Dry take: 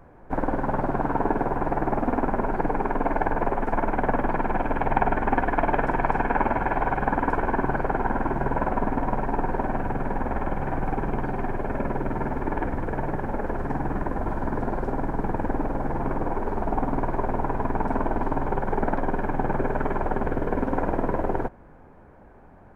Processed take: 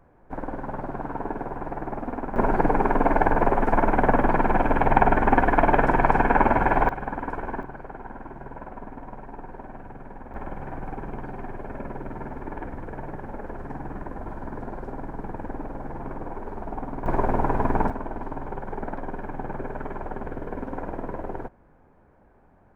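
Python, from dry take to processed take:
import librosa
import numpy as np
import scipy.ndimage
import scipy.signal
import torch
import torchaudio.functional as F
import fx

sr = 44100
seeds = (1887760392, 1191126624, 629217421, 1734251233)

y = fx.gain(x, sr, db=fx.steps((0.0, -7.0), (2.36, 4.0), (6.89, -7.0), (7.63, -14.0), (10.34, -7.5), (17.06, 3.0), (17.9, -7.5)))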